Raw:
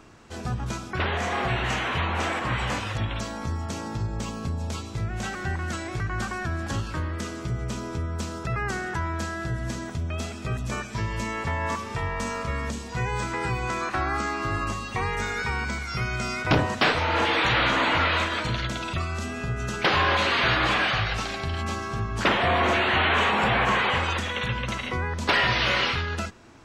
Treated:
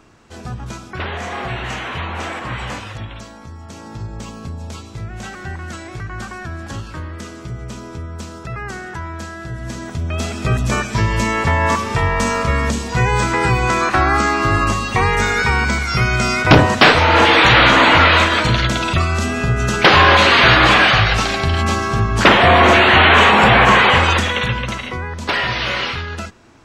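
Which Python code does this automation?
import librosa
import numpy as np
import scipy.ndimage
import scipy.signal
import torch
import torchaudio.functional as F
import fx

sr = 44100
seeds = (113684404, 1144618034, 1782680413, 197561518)

y = fx.gain(x, sr, db=fx.line((2.7, 1.0), (3.51, -6.0), (4.03, 0.5), (9.47, 0.5), (10.46, 12.0), (24.18, 12.0), (25.0, 2.5)))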